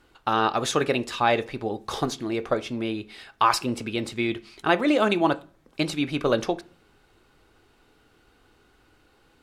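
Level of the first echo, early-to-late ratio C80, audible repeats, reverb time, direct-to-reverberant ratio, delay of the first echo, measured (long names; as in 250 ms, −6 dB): no echo audible, 27.5 dB, no echo audible, 0.45 s, 11.0 dB, no echo audible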